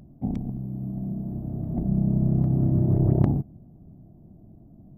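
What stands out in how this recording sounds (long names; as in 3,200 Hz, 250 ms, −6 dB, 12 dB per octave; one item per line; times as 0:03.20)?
background noise floor −51 dBFS
spectral slope −11.5 dB per octave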